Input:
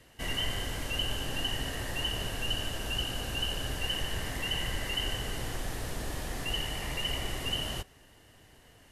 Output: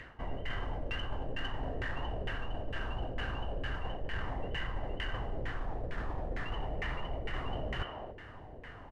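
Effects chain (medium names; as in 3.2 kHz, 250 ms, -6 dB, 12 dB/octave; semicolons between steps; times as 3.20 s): speakerphone echo 300 ms, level -12 dB; LFO low-pass saw down 2.2 Hz 480–1900 Hz; in parallel at -6.5 dB: saturation -32 dBFS, distortion -13 dB; on the sum: bass shelf 82 Hz +7 dB; reverse; compression 6:1, threshold -36 dBFS, peak gain reduction 14.5 dB; reverse; treble shelf 2.5 kHz +9.5 dB; upward compressor, threshold -56 dBFS; trim +2.5 dB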